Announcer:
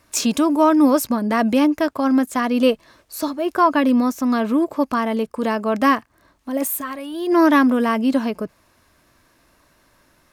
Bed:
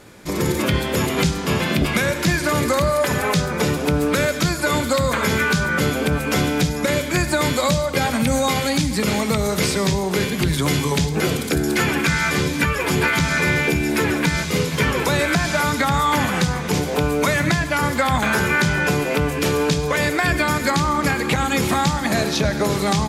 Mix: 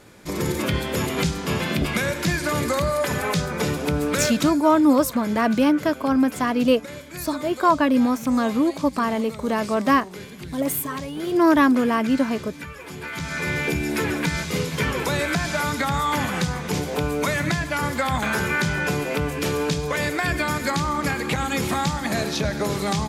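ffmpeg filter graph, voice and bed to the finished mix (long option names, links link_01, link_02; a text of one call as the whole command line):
ffmpeg -i stem1.wav -i stem2.wav -filter_complex "[0:a]adelay=4050,volume=-2dB[link_01];[1:a]volume=8.5dB,afade=type=out:start_time=4.27:duration=0.36:silence=0.223872,afade=type=in:start_time=13:duration=0.71:silence=0.237137[link_02];[link_01][link_02]amix=inputs=2:normalize=0" out.wav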